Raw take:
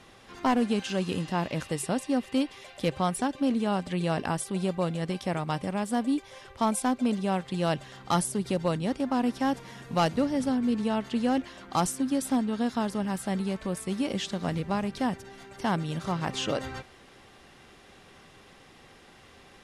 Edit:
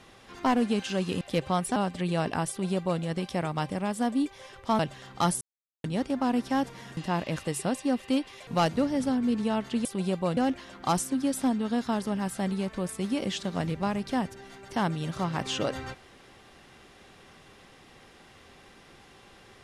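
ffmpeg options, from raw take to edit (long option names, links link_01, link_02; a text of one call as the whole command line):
ffmpeg -i in.wav -filter_complex "[0:a]asplit=10[link_01][link_02][link_03][link_04][link_05][link_06][link_07][link_08][link_09][link_10];[link_01]atrim=end=1.212[link_11];[link_02]atrim=start=2.708:end=3.262[link_12];[link_03]atrim=start=3.678:end=6.712[link_13];[link_04]atrim=start=7.688:end=8.31,asetpts=PTS-STARTPTS,afade=type=out:start_time=0.618:duration=0.004:curve=hsin[link_14];[link_05]atrim=start=8.31:end=8.74,asetpts=PTS-STARTPTS,volume=0[link_15];[link_06]atrim=start=8.74:end=9.872,asetpts=PTS-STARTPTS,afade=type=in:duration=0.004:curve=hsin[link_16];[link_07]atrim=start=1.208:end=2.712[link_17];[link_08]atrim=start=9.868:end=11.252[link_18];[link_09]atrim=start=4.408:end=4.932[link_19];[link_10]atrim=start=11.248[link_20];[link_11][link_12]acrossfade=duration=0.004:curve1=hsin:curve2=hsin[link_21];[link_21][link_13]acrossfade=duration=0.004:curve1=hsin:curve2=hsin[link_22];[link_14][link_15][link_16]concat=n=3:v=0:a=1[link_23];[link_22][link_23]acrossfade=duration=0.004:curve1=hsin:curve2=hsin[link_24];[link_24][link_17]acrossfade=duration=0.004:curve1=hsin:curve2=hsin[link_25];[link_25][link_18]acrossfade=duration=0.004:curve1=hsin:curve2=hsin[link_26];[link_26][link_19]acrossfade=duration=0.004:curve1=hsin:curve2=hsin[link_27];[link_27][link_20]acrossfade=duration=0.004:curve1=hsin:curve2=hsin" out.wav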